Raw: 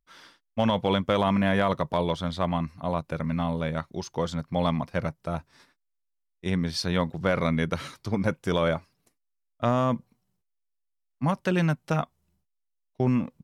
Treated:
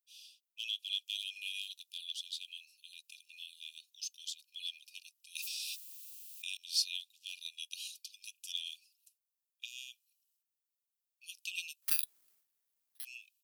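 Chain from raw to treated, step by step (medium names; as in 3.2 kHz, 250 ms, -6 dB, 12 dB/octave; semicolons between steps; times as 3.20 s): de-esser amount 45%; brick-wall FIR high-pass 2.4 kHz; 11.82–13.05 s: careless resampling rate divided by 6×, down none, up zero stuff; treble shelf 8.7 kHz +11.5 dB; 5.35–6.57 s: level flattener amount 100%; trim -2.5 dB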